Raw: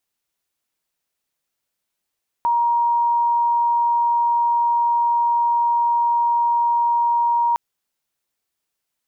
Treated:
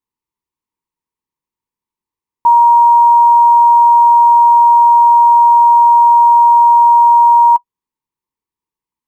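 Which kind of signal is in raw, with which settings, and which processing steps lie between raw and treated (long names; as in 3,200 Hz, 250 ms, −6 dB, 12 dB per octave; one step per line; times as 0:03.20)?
tone sine 944 Hz −15 dBFS 5.11 s
notch filter 1,000 Hz, Q 25
in parallel at −4 dB: bit reduction 5 bits
on the sum: drawn EQ curve 330 Hz 0 dB, 470 Hz −3 dB, 670 Hz −22 dB, 960 Hz +9 dB, 1,400 Hz −15 dB, 2,000 Hz −8 dB, 3,300 Hz −13 dB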